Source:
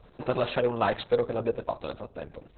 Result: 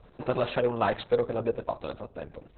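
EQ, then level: air absorption 96 m; 0.0 dB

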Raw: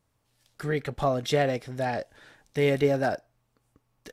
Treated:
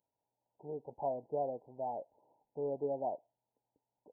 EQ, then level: brick-wall FIR low-pass 1000 Hz; differentiator; +11.5 dB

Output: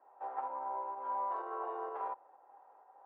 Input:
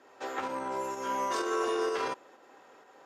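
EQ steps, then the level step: ladder band-pass 920 Hz, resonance 65%; air absorption 170 m; tilt shelf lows +9.5 dB, about 1100 Hz; +1.5 dB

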